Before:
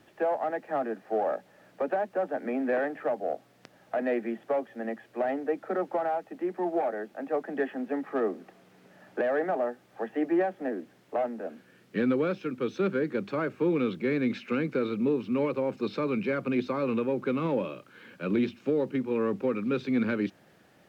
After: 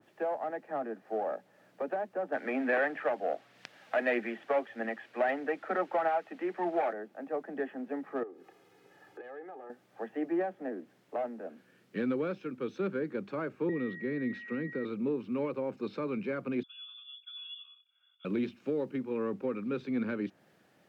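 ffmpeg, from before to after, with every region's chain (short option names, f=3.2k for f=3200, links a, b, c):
-filter_complex "[0:a]asettb=1/sr,asplit=3[a][b][c];[a]atrim=end=2.324[d];[b]atrim=start=2.32:end=6.93,asetpts=PTS-STARTPTS,afade=t=in:d=0.004:c=qsin,afade=t=out:st=4.606:d=0.004:c=qsin,equalizer=f=2.8k:w=0.4:g=13.5,aphaser=in_gain=1:out_gain=1:delay=4.5:decay=0.28:speed=1.6:type=triangular[e];[c]atrim=start=6.926[f];[d][e]acrossfade=d=0.004:c1=hsin:c2=qsin[g];[g][f]acrossfade=d=0.004:c1=qsin:c2=hsin,asettb=1/sr,asplit=3[h][i][j];[h]atrim=end=8.234[k];[i]atrim=start=8.23:end=9.7,asetpts=PTS-STARTPTS,afade=t=in:d=0.004:c=qsin,afade=t=out:st=1.466:d=0.004:c=qsin,aecho=1:1:2.4:0.78,atrim=end_sample=64827,acompressor=threshold=-44dB:ratio=2.5:attack=3.2:release=140:knee=1:detection=peak[l];[j]atrim=start=9.696[m];[k][l]acrossfade=d=0.004:c1=hsin:c2=qsin[n];[n][m]acrossfade=d=0.004:c1=qsin:c2=hsin,asettb=1/sr,asplit=3[o][p][q];[o]atrim=end=13.694[r];[p]atrim=start=13.69:end=14.85,asetpts=PTS-STARTPTS,afade=t=in:d=0.004:c=qsin,afade=t=out:st=1.156:d=0.004:c=qsin,highshelf=f=4.4k:g=-6,acrossover=split=450|3000[s][t][u];[t]acompressor=threshold=-48dB:ratio=1.5:attack=3.2:release=140:knee=2.83:detection=peak[v];[s][v][u]amix=inputs=3:normalize=0,aeval=exprs='val(0)+0.0158*sin(2*PI*1900*n/s)':c=same[w];[q]atrim=start=14.846[x];[r][w]acrossfade=d=0.004:c1=hsin:c2=qsin[y];[y][x]acrossfade=d=0.004:c1=qsin:c2=hsin,asettb=1/sr,asplit=3[z][aa][ab];[z]atrim=end=16.634[ac];[aa]atrim=start=16.63:end=18.25,asetpts=PTS-STARTPTS,afade=t=in:d=0.004:c=qsin,afade=t=out:st=1.616:d=0.004:c=qsin,asplit=3[ad][ae][af];[ad]bandpass=f=300:t=q:w=8,volume=0dB[ag];[ae]bandpass=f=870:t=q:w=8,volume=-6dB[ah];[af]bandpass=f=2.24k:t=q:w=8,volume=-9dB[ai];[ag][ah][ai]amix=inputs=3:normalize=0,adynamicsmooth=sensitivity=2:basefreq=2.5k,lowpass=f=3.1k:t=q:w=0.5098,lowpass=f=3.1k:t=q:w=0.6013,lowpass=f=3.1k:t=q:w=0.9,lowpass=f=3.1k:t=q:w=2.563,afreqshift=-3700[aj];[ab]atrim=start=18.246[ak];[ac][aj]acrossfade=d=0.004:c1=hsin:c2=qsin[al];[al][ak]acrossfade=d=0.004:c1=qsin:c2=hsin,highpass=100,adynamicequalizer=threshold=0.00447:dfrequency=2200:dqfactor=0.7:tfrequency=2200:tqfactor=0.7:attack=5:release=100:ratio=0.375:range=2.5:mode=cutabove:tftype=highshelf,volume=-5.5dB"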